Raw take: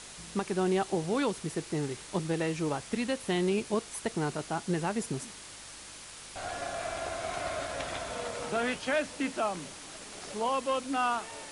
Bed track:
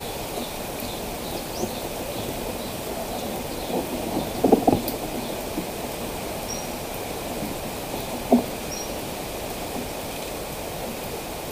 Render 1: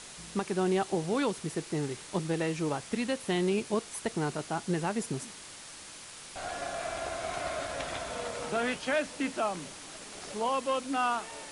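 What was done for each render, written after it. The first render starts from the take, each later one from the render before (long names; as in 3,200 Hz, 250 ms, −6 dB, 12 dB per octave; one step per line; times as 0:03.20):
hum removal 50 Hz, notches 2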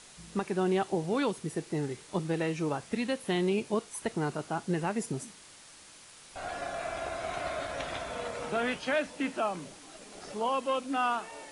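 noise reduction from a noise print 6 dB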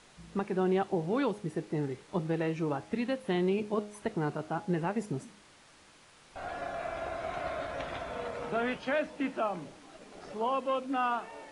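low-pass filter 2,100 Hz 6 dB per octave
hum removal 104 Hz, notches 8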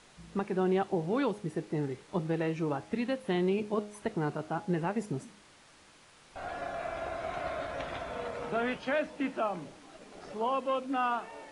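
no processing that can be heard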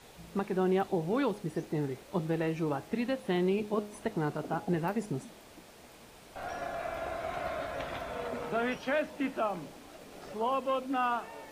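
mix in bed track −25 dB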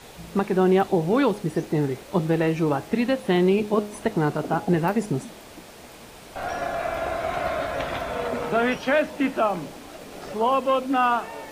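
level +9.5 dB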